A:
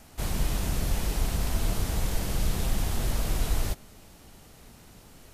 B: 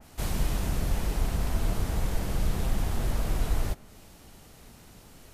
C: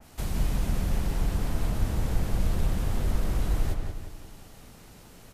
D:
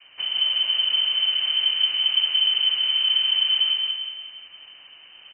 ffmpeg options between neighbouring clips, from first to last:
ffmpeg -i in.wav -af "adynamicequalizer=threshold=0.00224:dfrequency=2400:dqfactor=0.7:tfrequency=2400:tqfactor=0.7:attack=5:release=100:ratio=0.375:range=3:mode=cutabove:tftype=highshelf" out.wav
ffmpeg -i in.wav -filter_complex "[0:a]acrossover=split=350[link_01][link_02];[link_02]acompressor=threshold=-39dB:ratio=6[link_03];[link_01][link_03]amix=inputs=2:normalize=0,asplit=2[link_04][link_05];[link_05]adelay=177,lowpass=frequency=3900:poles=1,volume=-4dB,asplit=2[link_06][link_07];[link_07]adelay=177,lowpass=frequency=3900:poles=1,volume=0.46,asplit=2[link_08][link_09];[link_09]adelay=177,lowpass=frequency=3900:poles=1,volume=0.46,asplit=2[link_10][link_11];[link_11]adelay=177,lowpass=frequency=3900:poles=1,volume=0.46,asplit=2[link_12][link_13];[link_13]adelay=177,lowpass=frequency=3900:poles=1,volume=0.46,asplit=2[link_14][link_15];[link_15]adelay=177,lowpass=frequency=3900:poles=1,volume=0.46[link_16];[link_06][link_08][link_10][link_12][link_14][link_16]amix=inputs=6:normalize=0[link_17];[link_04][link_17]amix=inputs=2:normalize=0" out.wav
ffmpeg -i in.wav -af "aecho=1:1:224:0.355,lowpass=frequency=2600:width_type=q:width=0.5098,lowpass=frequency=2600:width_type=q:width=0.6013,lowpass=frequency=2600:width_type=q:width=0.9,lowpass=frequency=2600:width_type=q:width=2.563,afreqshift=-3100,volume=2dB" out.wav

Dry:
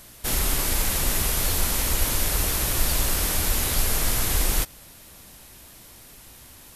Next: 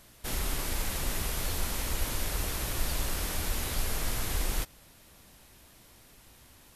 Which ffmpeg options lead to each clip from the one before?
ffmpeg -i in.wav -af "highshelf=frequency=6300:gain=-6,volume=-7dB" out.wav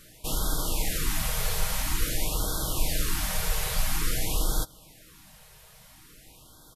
ffmpeg -i in.wav -af "aecho=1:1:6.4:0.42,afftfilt=real='re*(1-between(b*sr/1024,250*pow(2300/250,0.5+0.5*sin(2*PI*0.49*pts/sr))/1.41,250*pow(2300/250,0.5+0.5*sin(2*PI*0.49*pts/sr))*1.41))':imag='im*(1-between(b*sr/1024,250*pow(2300/250,0.5+0.5*sin(2*PI*0.49*pts/sr))/1.41,250*pow(2300/250,0.5+0.5*sin(2*PI*0.49*pts/sr))*1.41))':win_size=1024:overlap=0.75,volume=3.5dB" out.wav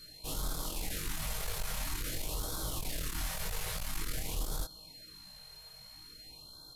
ffmpeg -i in.wav -af "aeval=exprs='val(0)+0.00501*sin(2*PI*4200*n/s)':channel_layout=same,asoftclip=type=tanh:threshold=-25dB,flanger=delay=18.5:depth=6.1:speed=0.8,volume=-2dB" out.wav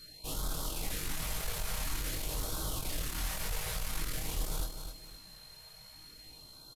ffmpeg -i in.wav -af "aecho=1:1:258|516|774|1032:0.398|0.131|0.0434|0.0143" out.wav

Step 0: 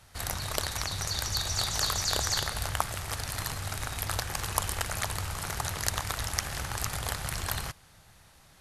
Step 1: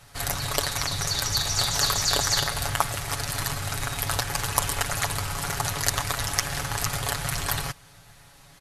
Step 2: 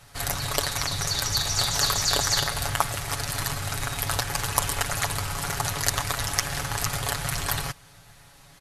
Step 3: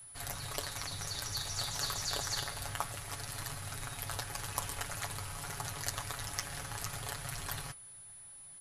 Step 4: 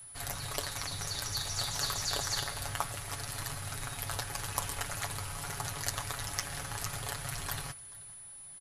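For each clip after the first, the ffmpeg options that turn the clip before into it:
ffmpeg -i in.wav -af "aecho=1:1:7.1:0.69,volume=4dB" out.wav
ffmpeg -i in.wav -af anull out.wav
ffmpeg -i in.wav -af "flanger=delay=7.6:depth=3.7:regen=-65:speed=0.53:shape=triangular,aeval=exprs='val(0)+0.00891*sin(2*PI*10000*n/s)':channel_layout=same,volume=-8.5dB" out.wav
ffmpeg -i in.wav -af "aecho=1:1:433:0.075,volume=2.5dB" out.wav

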